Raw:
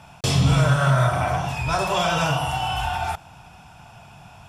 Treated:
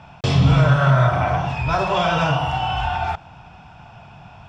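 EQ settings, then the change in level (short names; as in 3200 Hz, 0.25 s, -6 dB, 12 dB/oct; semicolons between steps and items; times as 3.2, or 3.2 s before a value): air absorption 170 m; +3.5 dB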